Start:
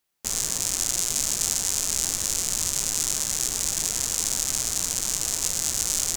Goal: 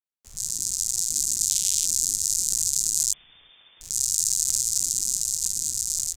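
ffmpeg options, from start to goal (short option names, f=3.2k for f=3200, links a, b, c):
-filter_complex "[0:a]asettb=1/sr,asplit=3[a][b][c];[a]atrim=end=3.134[d];[b]atrim=start=3.13:end=3.81,asetpts=PTS-STARTPTS,afade=t=in:d=0.004:c=qsin,afade=t=out:st=0.676:d=0.004:c=qsin,lowpass=f=3.1k:t=q:w=0.5098,lowpass=f=3.1k:t=q:w=0.6013,lowpass=f=3.1k:t=q:w=0.9,lowpass=f=3.1k:t=q:w=2.563,afreqshift=-3600[e];[c]atrim=start=3.806[f];[d][e]acrossfade=d=0.004:c1=hsin:c2=qsin[g];[g][f]acrossfade=d=0.004:c1=qsin:c2=hsin,afwtdn=0.0316,acrossover=split=370|2100[h][i][j];[h]aecho=1:1:373:0.0944[k];[j]dynaudnorm=f=200:g=11:m=11.5dB[l];[k][i][l]amix=inputs=3:normalize=0,adynamicequalizer=threshold=0.0112:dfrequency=2500:dqfactor=0.7:tfrequency=2500:tqfactor=0.7:attack=5:release=100:ratio=0.375:range=2.5:mode=boostabove:tftype=highshelf,volume=-5.5dB"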